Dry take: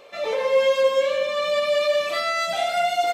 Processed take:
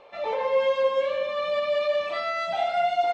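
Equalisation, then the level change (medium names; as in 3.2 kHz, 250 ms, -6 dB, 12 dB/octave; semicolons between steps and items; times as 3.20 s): low-pass 3.7 kHz 12 dB/octave; bass shelf 95 Hz +8 dB; peaking EQ 870 Hz +10.5 dB 0.48 oct; -5.5 dB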